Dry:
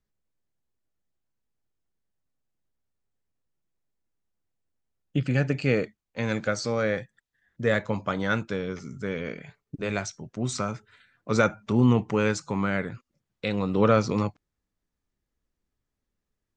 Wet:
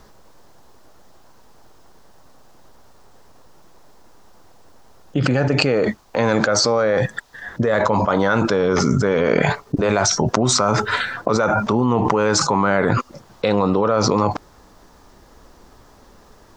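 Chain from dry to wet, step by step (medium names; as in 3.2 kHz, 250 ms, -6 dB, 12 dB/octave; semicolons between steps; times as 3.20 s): FFT filter 160 Hz 0 dB, 960 Hz +13 dB, 2.3 kHz -1 dB, 5.3 kHz +5 dB, 8.8 kHz -2 dB; level flattener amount 100%; trim -8 dB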